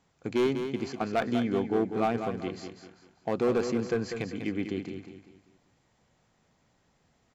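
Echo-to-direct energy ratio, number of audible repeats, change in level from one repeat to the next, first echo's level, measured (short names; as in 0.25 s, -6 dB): -7.5 dB, 4, -8.5 dB, -8.0 dB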